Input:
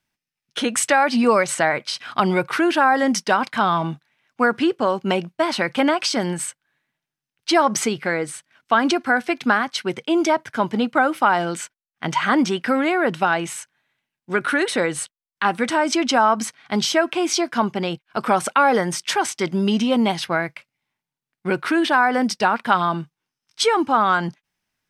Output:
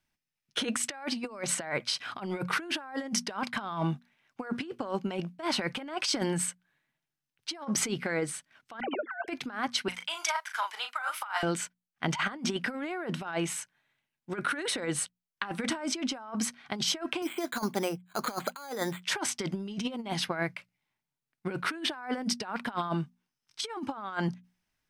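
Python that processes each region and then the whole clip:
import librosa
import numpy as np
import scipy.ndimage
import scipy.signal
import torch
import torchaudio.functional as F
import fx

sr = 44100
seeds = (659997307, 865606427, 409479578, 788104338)

y = fx.chain(x, sr, fx.sine_speech(),
    fx.highpass(hz=320.0, slope=12),
    fx.dispersion(late='lows', ms=44.0, hz=1600.0), at=(8.8, 9.28))
y = fx.chain(y, sr, fx.highpass(hz=980.0, slope=24),
    fx.high_shelf(hz=9500.0, db=9.0),
    fx.doubler(ms=37.0, db=-7), at=(9.88, 11.43))
y = fx.chain(y, sr, fx.highpass(hz=270.0, slope=6),
    fx.resample_bad(factor=8, down='filtered', up='hold'), at=(17.22, 19.03))
y = fx.low_shelf(y, sr, hz=72.0, db=9.5)
y = fx.hum_notches(y, sr, base_hz=60, count=4)
y = fx.over_compress(y, sr, threshold_db=-23.0, ratio=-0.5)
y = F.gain(torch.from_numpy(y), -8.5).numpy()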